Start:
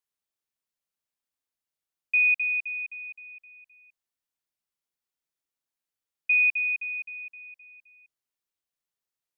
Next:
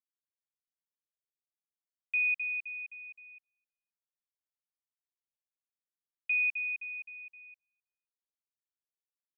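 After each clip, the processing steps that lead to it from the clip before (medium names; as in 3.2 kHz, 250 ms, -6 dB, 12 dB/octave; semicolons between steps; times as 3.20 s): gate -47 dBFS, range -36 dB; trim -7.5 dB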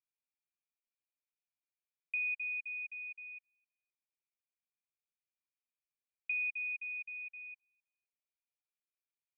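compression 2:1, threshold -48 dBFS, peak gain reduction 11 dB; band-pass filter 2.4 kHz, Q 15; trim +7.5 dB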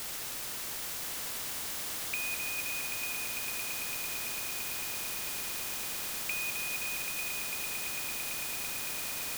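word length cut 10-bit, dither triangular; echo with a slow build-up 112 ms, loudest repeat 8, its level -12.5 dB; spectrum-flattening compressor 2:1; trim +6 dB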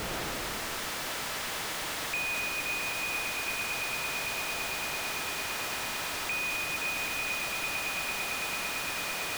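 overdrive pedal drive 32 dB, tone 2.1 kHz, clips at -21 dBFS; reverberation, pre-delay 45 ms, DRR 7.5 dB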